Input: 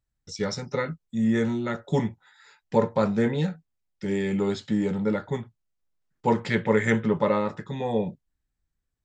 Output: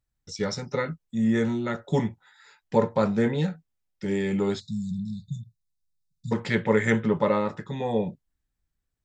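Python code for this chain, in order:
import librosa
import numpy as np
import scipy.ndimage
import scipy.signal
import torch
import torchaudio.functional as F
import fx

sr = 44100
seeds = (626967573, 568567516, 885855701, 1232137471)

y = fx.brickwall_bandstop(x, sr, low_hz=210.0, high_hz=3500.0, at=(4.59, 6.31), fade=0.02)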